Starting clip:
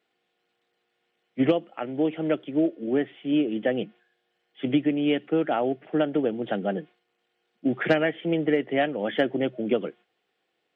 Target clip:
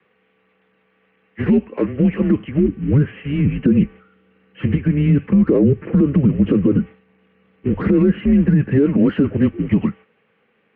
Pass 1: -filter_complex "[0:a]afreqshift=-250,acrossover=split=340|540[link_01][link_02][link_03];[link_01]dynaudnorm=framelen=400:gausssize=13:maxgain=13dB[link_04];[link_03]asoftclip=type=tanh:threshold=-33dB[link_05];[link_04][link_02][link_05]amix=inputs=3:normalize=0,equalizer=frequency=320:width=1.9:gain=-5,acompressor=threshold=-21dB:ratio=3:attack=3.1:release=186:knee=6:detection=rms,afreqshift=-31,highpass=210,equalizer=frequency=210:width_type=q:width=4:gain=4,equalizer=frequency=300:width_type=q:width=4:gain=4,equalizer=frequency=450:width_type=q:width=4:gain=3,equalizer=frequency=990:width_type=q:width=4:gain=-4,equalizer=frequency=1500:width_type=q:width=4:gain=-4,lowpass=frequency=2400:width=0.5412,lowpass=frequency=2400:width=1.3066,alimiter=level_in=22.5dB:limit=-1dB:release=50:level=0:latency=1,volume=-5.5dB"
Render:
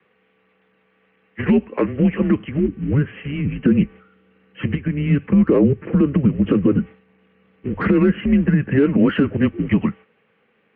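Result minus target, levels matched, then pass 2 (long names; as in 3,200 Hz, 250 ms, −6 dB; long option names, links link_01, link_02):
downward compressor: peak gain reduction +6.5 dB; soft clipping: distortion −6 dB
-filter_complex "[0:a]afreqshift=-250,acrossover=split=340|540[link_01][link_02][link_03];[link_01]dynaudnorm=framelen=400:gausssize=13:maxgain=13dB[link_04];[link_03]asoftclip=type=tanh:threshold=-45dB[link_05];[link_04][link_02][link_05]amix=inputs=3:normalize=0,equalizer=frequency=320:width=1.9:gain=-5,acompressor=threshold=-11dB:ratio=3:attack=3.1:release=186:knee=6:detection=rms,afreqshift=-31,highpass=210,equalizer=frequency=210:width_type=q:width=4:gain=4,equalizer=frequency=300:width_type=q:width=4:gain=4,equalizer=frequency=450:width_type=q:width=4:gain=3,equalizer=frequency=990:width_type=q:width=4:gain=-4,equalizer=frequency=1500:width_type=q:width=4:gain=-4,lowpass=frequency=2400:width=0.5412,lowpass=frequency=2400:width=1.3066,alimiter=level_in=22.5dB:limit=-1dB:release=50:level=0:latency=1,volume=-5.5dB"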